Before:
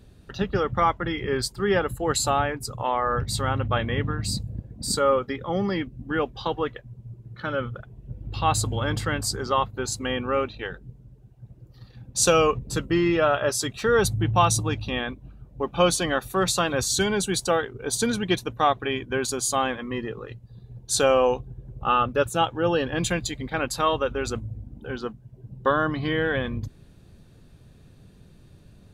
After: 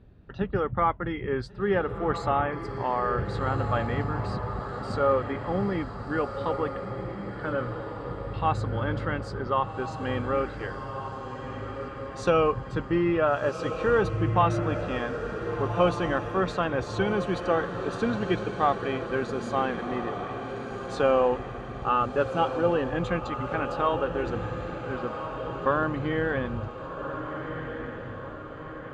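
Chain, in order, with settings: low-pass 2 kHz 12 dB/octave; on a send: echo that smears into a reverb 1480 ms, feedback 55%, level -7.5 dB; on the sum: trim -2.5 dB

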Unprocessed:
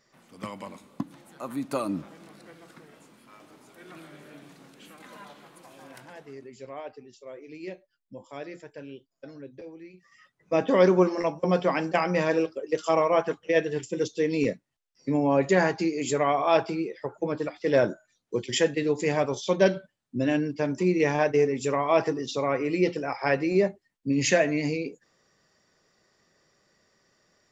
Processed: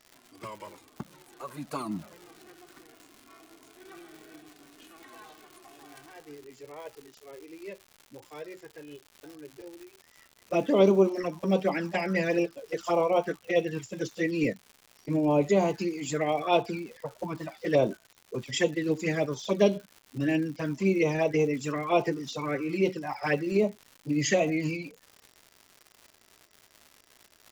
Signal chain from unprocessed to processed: touch-sensitive flanger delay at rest 3.2 ms, full sweep at -18.5 dBFS; formant-preserving pitch shift +1 st; crackle 230 per s -40 dBFS

